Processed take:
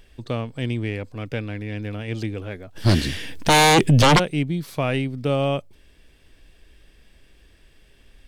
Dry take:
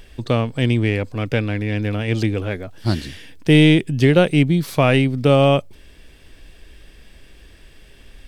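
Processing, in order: 2.75–4.18 sine folder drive 10 dB -> 15 dB, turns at -2 dBFS; gain -8 dB

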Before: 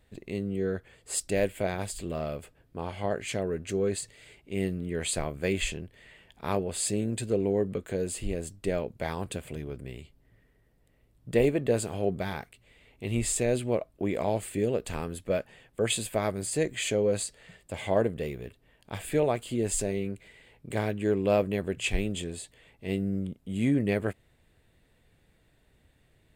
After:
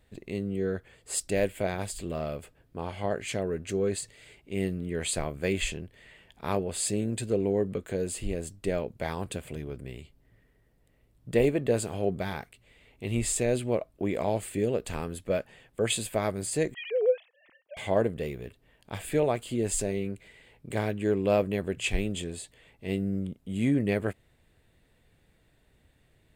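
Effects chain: 16.74–17.77 sine-wave speech

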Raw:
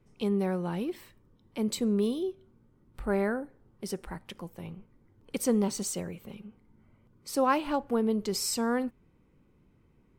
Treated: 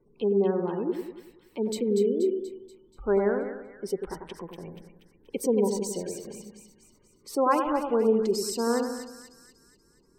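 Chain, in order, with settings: spectral gate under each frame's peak -25 dB strong; fifteen-band EQ 100 Hz -9 dB, 400 Hz +10 dB, 1000 Hz +5 dB; on a send: split-band echo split 1700 Hz, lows 95 ms, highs 0.24 s, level -6 dB; on the sum: gain -2.5 dB

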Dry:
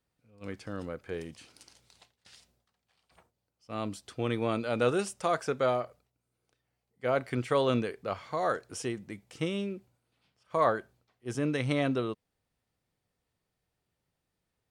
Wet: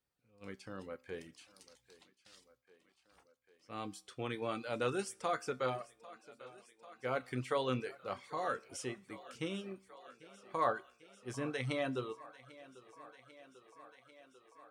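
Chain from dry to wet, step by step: notch 640 Hz, Q 12; resonator 64 Hz, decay 0.51 s, harmonics all, mix 70%; on a send: thinning echo 0.794 s, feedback 80%, high-pass 210 Hz, level -18.5 dB; on the sum: reverb removal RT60 0.56 s; low shelf 360 Hz -5 dB; gain +2 dB

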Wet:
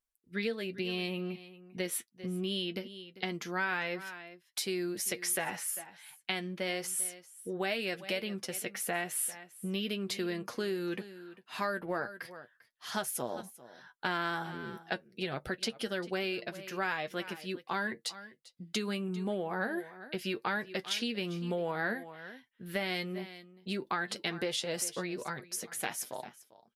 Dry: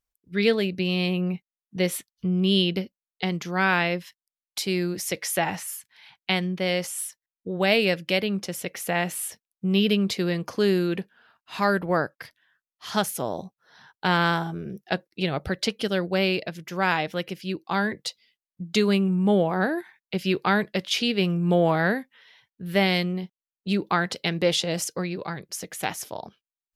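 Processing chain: echo 0.396 s -19 dB; flange 1.3 Hz, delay 7.8 ms, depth 1.1 ms, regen +40%; compressor, threshold -28 dBFS, peak gain reduction 11 dB; fifteen-band EQ 100 Hz -12 dB, 1600 Hz +4 dB, 10000 Hz +6 dB; gain -2.5 dB

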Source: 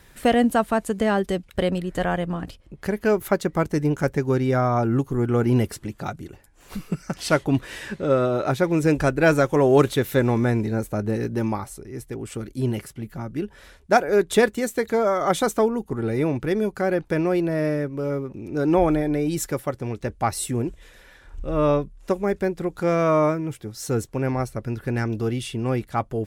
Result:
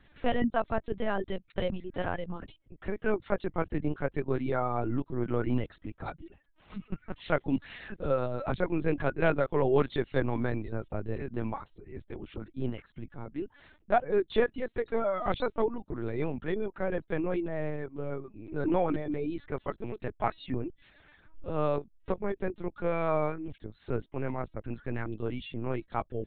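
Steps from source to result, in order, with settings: reverb removal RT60 0.59 s; 19.55–20.58 comb 4.6 ms, depth 78%; LPC vocoder at 8 kHz pitch kept; gain -7.5 dB

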